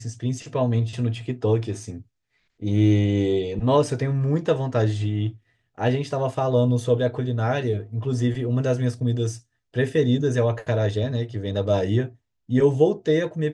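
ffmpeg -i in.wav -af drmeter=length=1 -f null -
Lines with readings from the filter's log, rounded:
Channel 1: DR: 10.2
Overall DR: 10.2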